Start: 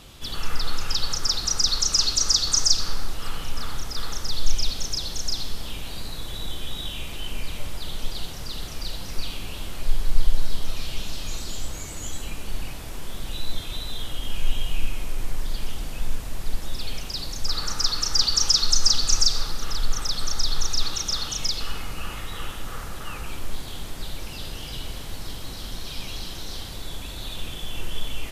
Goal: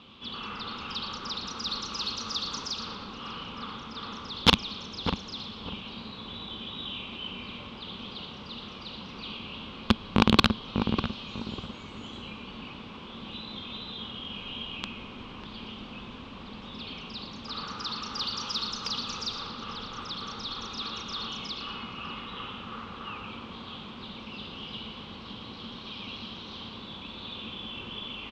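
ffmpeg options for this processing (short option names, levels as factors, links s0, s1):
-filter_complex "[0:a]aemphasis=mode=reproduction:type=50kf,asplit=2[s0][s1];[s1]aecho=0:1:116:0.316[s2];[s0][s2]amix=inputs=2:normalize=0,aeval=exprs='(mod(2.24*val(0)+1,2)-1)/2.24':c=same,highpass=130,equalizer=f=140:t=q:w=4:g=-6,equalizer=f=220:t=q:w=4:g=9,equalizer=f=320:t=q:w=4:g=-3,equalizer=f=660:t=q:w=4:g=-7,equalizer=f=1100:t=q:w=4:g=7,equalizer=f=1800:t=q:w=4:g=-6,lowpass=f=3500:w=0.5412,lowpass=f=3500:w=1.3066,asplit=2[s3][s4];[s4]adelay=597,lowpass=f=860:p=1,volume=0.562,asplit=2[s5][s6];[s6]adelay=597,lowpass=f=860:p=1,volume=0.33,asplit=2[s7][s8];[s8]adelay=597,lowpass=f=860:p=1,volume=0.33,asplit=2[s9][s10];[s10]adelay=597,lowpass=f=860:p=1,volume=0.33[s11];[s5][s7][s9][s11]amix=inputs=4:normalize=0[s12];[s3][s12]amix=inputs=2:normalize=0,aexciter=amount=2.2:drive=6.3:freq=2700,volume=0.668"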